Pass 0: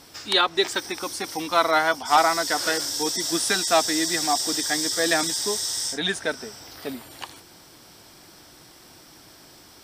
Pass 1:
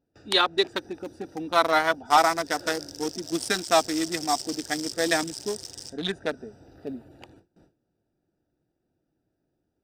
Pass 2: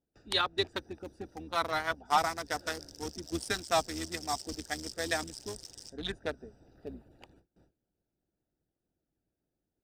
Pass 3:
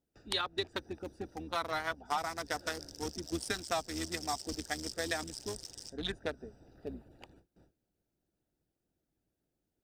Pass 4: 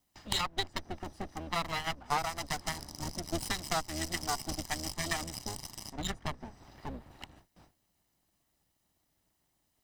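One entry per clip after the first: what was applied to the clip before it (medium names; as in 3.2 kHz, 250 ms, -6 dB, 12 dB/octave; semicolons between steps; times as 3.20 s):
local Wiener filter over 41 samples; gate with hold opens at -44 dBFS
octave divider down 2 oct, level -3 dB; harmonic-percussive split harmonic -7 dB; trim -6.5 dB
compression 4:1, threshold -32 dBFS, peak gain reduction 10.5 dB; trim +1 dB
comb filter that takes the minimum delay 1 ms; tape noise reduction on one side only encoder only; trim +4 dB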